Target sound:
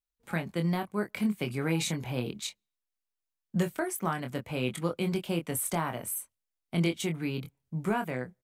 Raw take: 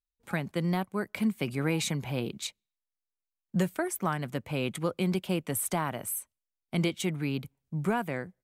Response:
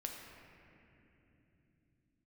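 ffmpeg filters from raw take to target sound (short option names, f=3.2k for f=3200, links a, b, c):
-filter_complex "[0:a]asplit=2[a][b];[b]adelay=24,volume=-6dB[c];[a][c]amix=inputs=2:normalize=0,volume=-1.5dB"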